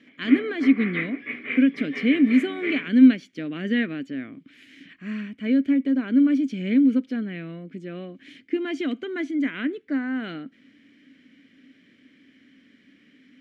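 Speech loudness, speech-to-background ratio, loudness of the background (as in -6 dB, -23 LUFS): -23.0 LUFS, 8.5 dB, -31.5 LUFS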